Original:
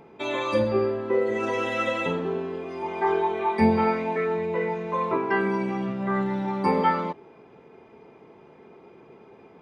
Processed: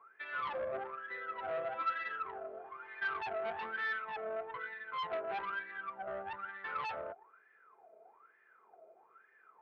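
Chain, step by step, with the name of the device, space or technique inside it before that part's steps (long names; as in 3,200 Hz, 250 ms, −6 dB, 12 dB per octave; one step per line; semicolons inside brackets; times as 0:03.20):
wah-wah guitar rig (LFO wah 1.1 Hz 630–1,800 Hz, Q 21; tube saturation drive 43 dB, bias 0.5; loudspeaker in its box 98–3,700 Hz, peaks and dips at 120 Hz −7 dB, 180 Hz −6 dB, 270 Hz −8 dB, 910 Hz −8 dB, 1,400 Hz +6 dB)
level +11 dB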